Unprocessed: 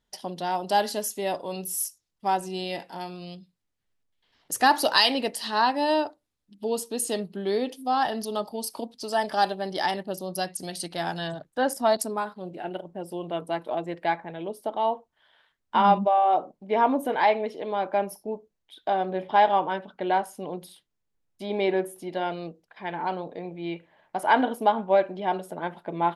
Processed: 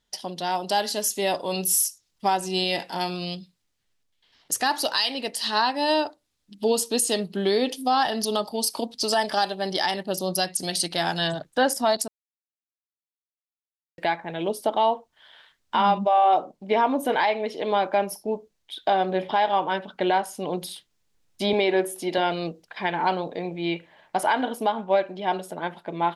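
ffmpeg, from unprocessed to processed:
ffmpeg -i in.wav -filter_complex "[0:a]asettb=1/sr,asplit=3[link_01][link_02][link_03];[link_01]atrim=end=21.534[link_04];[link_02]atrim=start=21.53:end=22.18,asetpts=PTS-STARTPTS,afade=type=in:duration=0.004:curve=qsin,afade=type=out:start_time=0.646:duration=0.004:curve=qsin,highpass=200[link_05];[link_03]atrim=start=22.176[link_06];[link_04][link_05]acrossfade=duration=0.004:curve1=hsin:curve2=qsin[link_07];[link_07][link_06]acrossfade=duration=0.004:curve1=qsin:curve2=hsin,asplit=3[link_08][link_09][link_10];[link_08]atrim=end=12.08,asetpts=PTS-STARTPTS,afade=type=out:start_time=12.076:duration=0.004:curve=hsin[link_11];[link_09]atrim=start=12.08:end=13.98,asetpts=PTS-STARTPTS,volume=0[link_12];[link_10]atrim=start=13.98,asetpts=PTS-STARTPTS,afade=type=in:duration=0.004:curve=hsin[link_13];[link_11][link_12][link_13]concat=n=3:v=0:a=1,equalizer=frequency=5000:width=0.46:gain=7,dynaudnorm=framelen=150:gausssize=17:maxgain=11.5dB,alimiter=limit=-11.5dB:level=0:latency=1:release=449" out.wav

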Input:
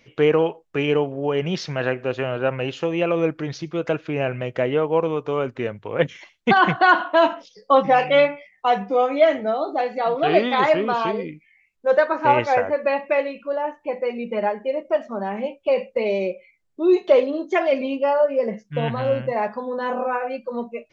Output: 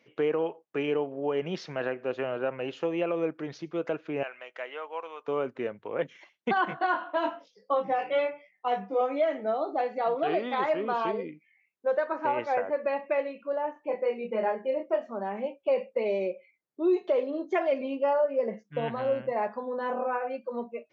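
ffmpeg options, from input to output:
ffmpeg -i in.wav -filter_complex "[0:a]asettb=1/sr,asplit=3[link_01][link_02][link_03];[link_01]atrim=end=4.234[link_04];[link_02]atrim=start=4.23:end=5.28,asetpts=PTS-STARTPTS,afade=type=in:duration=0.004:curve=qsin,afade=type=out:start_time=1.046:duration=0.004:curve=qsin,highpass=1100[link_05];[link_03]atrim=start=5.276[link_06];[link_04][link_05]acrossfade=duration=0.004:curve1=hsin:curve2=qsin[link_07];[link_07][link_06]acrossfade=duration=0.004:curve1=qsin:curve2=hsin,asettb=1/sr,asplit=3[link_08][link_09][link_10];[link_08]atrim=end=6.654[link_11];[link_09]atrim=start=6.65:end=9.01,asetpts=PTS-STARTPTS,afade=type=in:duration=0.004:curve=qsin,afade=type=out:start_time=2.356:duration=0.004:curve=qsin,flanger=delay=20:depth=3.4:speed=1[link_12];[link_10]atrim=start=9.006[link_13];[link_11][link_12]acrossfade=duration=0.004:curve1=hsin:curve2=qsin[link_14];[link_14][link_13]acrossfade=duration=0.004:curve1=qsin:curve2=hsin,asettb=1/sr,asplit=3[link_15][link_16][link_17];[link_15]atrim=end=13.734[link_18];[link_16]atrim=start=13.73:end=15.12,asetpts=PTS-STARTPTS,afade=type=in:duration=0.004:curve=qsin,afade=type=out:start_time=1.386:duration=0.004:curve=qsin,asplit=2[link_19][link_20];[link_20]adelay=27,volume=-4dB[link_21];[link_19][link_21]amix=inputs=2:normalize=0,atrim=end_sample=61299[link_22];[link_17]atrim=start=15.116[link_23];[link_18][link_22]acrossfade=duration=0.004:curve1=hsin:curve2=qsin[link_24];[link_24][link_23]acrossfade=duration=0.004:curve1=qsin:curve2=hsin,highshelf=frequency=2700:gain=-9,alimiter=limit=-12dB:level=0:latency=1:release=265,highpass=230,volume=-5dB" out.wav

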